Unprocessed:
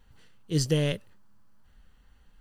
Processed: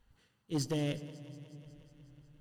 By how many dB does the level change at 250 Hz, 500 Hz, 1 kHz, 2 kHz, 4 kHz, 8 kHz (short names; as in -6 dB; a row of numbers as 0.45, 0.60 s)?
-5.5, -8.5, -1.0, -9.5, -9.5, -9.0 dB